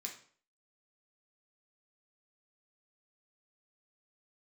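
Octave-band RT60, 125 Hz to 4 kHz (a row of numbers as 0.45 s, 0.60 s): 0.50 s, 0.50 s, 0.50 s, 0.50 s, 0.45 s, 0.40 s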